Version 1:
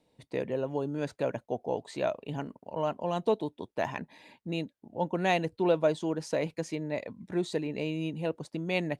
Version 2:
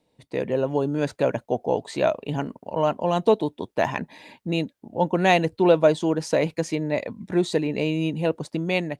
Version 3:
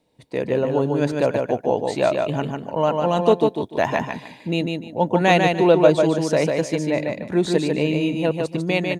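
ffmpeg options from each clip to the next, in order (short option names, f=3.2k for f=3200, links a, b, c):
-af "dynaudnorm=f=150:g=5:m=7.5dB,volume=1dB"
-af "aecho=1:1:148|296|444:0.631|0.151|0.0363,volume=2dB"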